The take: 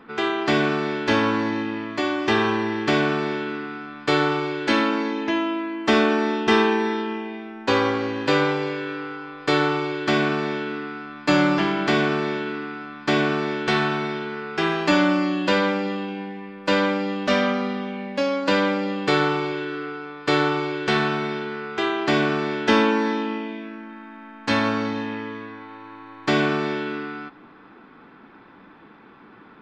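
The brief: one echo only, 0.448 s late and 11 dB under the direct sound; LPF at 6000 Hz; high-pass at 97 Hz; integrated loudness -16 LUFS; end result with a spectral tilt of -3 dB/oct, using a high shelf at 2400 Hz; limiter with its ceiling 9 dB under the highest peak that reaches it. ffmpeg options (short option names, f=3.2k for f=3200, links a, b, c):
-af "highpass=97,lowpass=6k,highshelf=f=2.4k:g=3.5,alimiter=limit=-13dB:level=0:latency=1,aecho=1:1:448:0.282,volume=8dB"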